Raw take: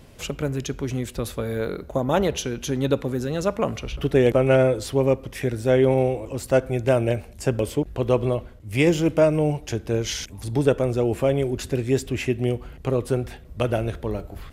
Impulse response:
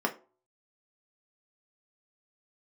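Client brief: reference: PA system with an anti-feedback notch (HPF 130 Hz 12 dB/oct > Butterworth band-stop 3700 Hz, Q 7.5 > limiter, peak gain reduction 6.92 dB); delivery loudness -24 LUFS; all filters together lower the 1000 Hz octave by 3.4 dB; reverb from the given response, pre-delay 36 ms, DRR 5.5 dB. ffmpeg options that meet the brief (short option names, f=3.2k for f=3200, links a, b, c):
-filter_complex "[0:a]equalizer=f=1k:t=o:g=-5,asplit=2[a][b];[1:a]atrim=start_sample=2205,adelay=36[c];[b][c]afir=irnorm=-1:irlink=0,volume=-14.5dB[d];[a][d]amix=inputs=2:normalize=0,highpass=130,asuperstop=centerf=3700:order=8:qfactor=7.5,volume=0.5dB,alimiter=limit=-11dB:level=0:latency=1"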